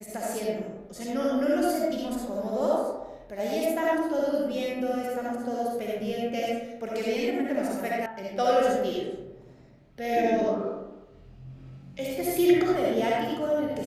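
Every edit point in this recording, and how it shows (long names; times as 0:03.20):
0:08.06: cut off before it has died away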